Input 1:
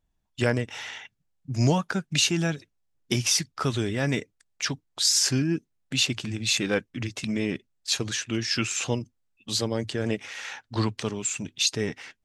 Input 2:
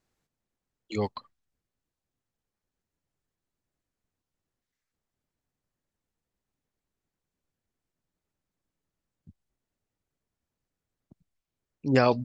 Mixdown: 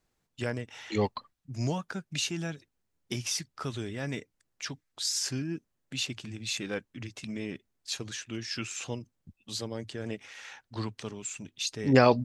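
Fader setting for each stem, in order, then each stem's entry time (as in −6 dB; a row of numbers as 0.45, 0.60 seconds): −9.0, +1.5 decibels; 0.00, 0.00 seconds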